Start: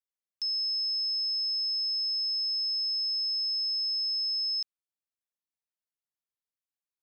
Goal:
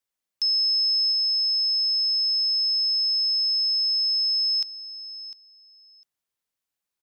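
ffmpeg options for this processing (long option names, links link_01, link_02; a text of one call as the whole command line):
ffmpeg -i in.wav -af "aecho=1:1:702|1404:0.178|0.0267,volume=8dB" out.wav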